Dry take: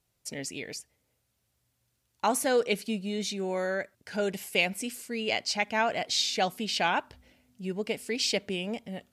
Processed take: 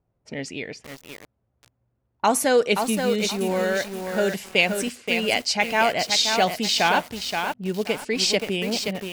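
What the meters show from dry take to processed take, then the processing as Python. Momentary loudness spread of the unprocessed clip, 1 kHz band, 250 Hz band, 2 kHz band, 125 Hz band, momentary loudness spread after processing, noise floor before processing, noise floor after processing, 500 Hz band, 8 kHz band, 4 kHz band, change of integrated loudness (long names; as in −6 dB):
10 LU, +7.5 dB, +7.0 dB, +7.5 dB, +7.0 dB, 13 LU, −77 dBFS, −74 dBFS, +7.5 dB, +7.0 dB, +7.5 dB, +7.5 dB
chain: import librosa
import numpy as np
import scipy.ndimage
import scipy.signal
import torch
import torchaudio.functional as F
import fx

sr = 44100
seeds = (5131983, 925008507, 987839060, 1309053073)

y = fx.env_lowpass(x, sr, base_hz=850.0, full_db=-28.0)
y = fx.echo_crushed(y, sr, ms=526, feedback_pct=35, bits=7, wet_db=-5)
y = F.gain(torch.from_numpy(y), 6.5).numpy()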